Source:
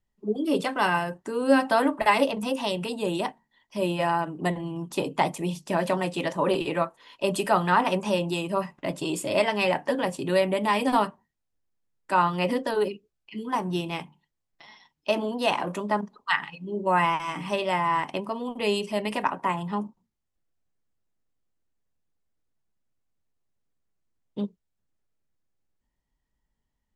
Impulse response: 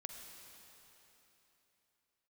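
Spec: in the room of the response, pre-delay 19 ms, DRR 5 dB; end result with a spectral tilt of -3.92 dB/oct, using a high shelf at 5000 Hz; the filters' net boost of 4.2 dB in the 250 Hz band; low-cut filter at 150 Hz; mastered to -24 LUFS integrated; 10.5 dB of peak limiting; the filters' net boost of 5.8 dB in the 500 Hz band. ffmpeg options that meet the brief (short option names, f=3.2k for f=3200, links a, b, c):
-filter_complex "[0:a]highpass=150,equalizer=f=250:t=o:g=4.5,equalizer=f=500:t=o:g=6,highshelf=f=5k:g=7.5,alimiter=limit=-13dB:level=0:latency=1,asplit=2[a][b];[1:a]atrim=start_sample=2205,adelay=19[c];[b][c]afir=irnorm=-1:irlink=0,volume=-1.5dB[d];[a][d]amix=inputs=2:normalize=0,volume=-0.5dB"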